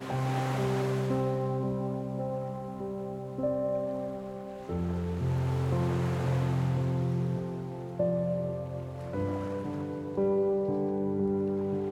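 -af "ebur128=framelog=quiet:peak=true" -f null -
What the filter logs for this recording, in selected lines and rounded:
Integrated loudness:
  I:         -31.4 LUFS
  Threshold: -41.4 LUFS
Loudness range:
  LRA:         3.6 LU
  Threshold: -51.8 LUFS
  LRA low:   -33.9 LUFS
  LRA high:  -30.3 LUFS
True peak:
  Peak:      -16.5 dBFS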